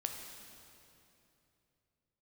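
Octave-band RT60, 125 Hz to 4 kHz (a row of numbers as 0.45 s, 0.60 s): 3.6 s, 3.3 s, 3.1 s, 2.7 s, 2.6 s, 2.4 s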